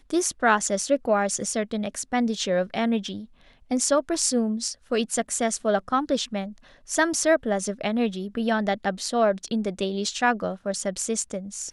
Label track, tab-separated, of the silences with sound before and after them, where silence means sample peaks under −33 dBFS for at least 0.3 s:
3.210000	3.710000	silence
6.500000	6.890000	silence